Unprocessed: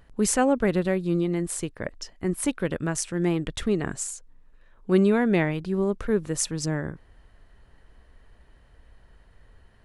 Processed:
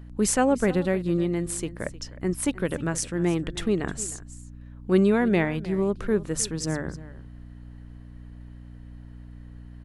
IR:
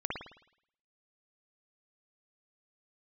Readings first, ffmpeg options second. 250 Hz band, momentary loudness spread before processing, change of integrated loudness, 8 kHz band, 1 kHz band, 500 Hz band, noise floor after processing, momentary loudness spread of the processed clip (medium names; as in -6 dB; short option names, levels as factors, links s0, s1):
0.0 dB, 11 LU, 0.0 dB, 0.0 dB, 0.0 dB, 0.0 dB, -44 dBFS, 23 LU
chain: -af "bandreject=f=50:t=h:w=6,bandreject=f=100:t=h:w=6,bandreject=f=150:t=h:w=6,aeval=exprs='val(0)+0.00891*(sin(2*PI*60*n/s)+sin(2*PI*2*60*n/s)/2+sin(2*PI*3*60*n/s)/3+sin(2*PI*4*60*n/s)/4+sin(2*PI*5*60*n/s)/5)':c=same,aecho=1:1:309:0.133"